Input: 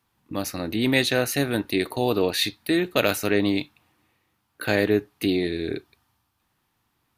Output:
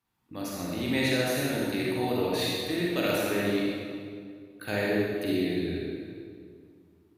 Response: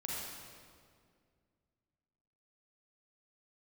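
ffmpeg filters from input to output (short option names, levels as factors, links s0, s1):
-filter_complex "[1:a]atrim=start_sample=2205[s0];[0:a][s0]afir=irnorm=-1:irlink=0,volume=0.473"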